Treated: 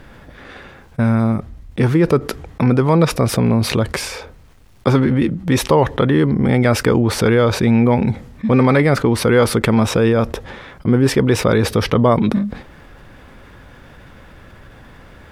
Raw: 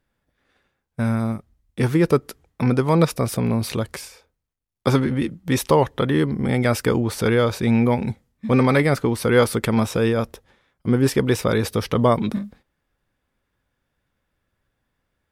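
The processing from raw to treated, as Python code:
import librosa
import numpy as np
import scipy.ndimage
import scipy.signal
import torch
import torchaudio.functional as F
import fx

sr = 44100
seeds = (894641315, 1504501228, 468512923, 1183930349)

y = fx.lowpass(x, sr, hz=2900.0, slope=6)
y = fx.env_flatten(y, sr, amount_pct=50)
y = y * librosa.db_to_amplitude(2.0)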